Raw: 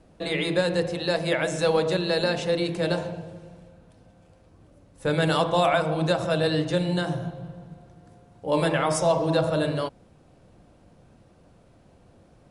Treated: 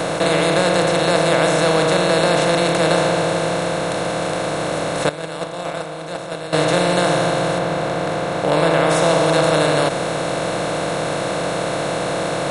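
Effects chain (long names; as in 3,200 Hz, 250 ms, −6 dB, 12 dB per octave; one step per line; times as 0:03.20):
compressor on every frequency bin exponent 0.2
0:05.09–0:06.53: noise gate −11 dBFS, range −14 dB
0:07.58–0:08.89: high-shelf EQ 5,100 Hz −9 dB
level −1 dB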